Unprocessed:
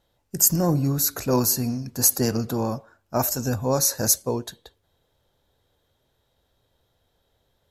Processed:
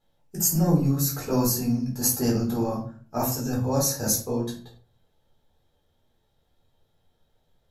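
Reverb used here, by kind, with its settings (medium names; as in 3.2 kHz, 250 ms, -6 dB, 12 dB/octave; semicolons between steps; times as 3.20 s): simulated room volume 280 m³, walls furnished, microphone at 4 m; trim -10 dB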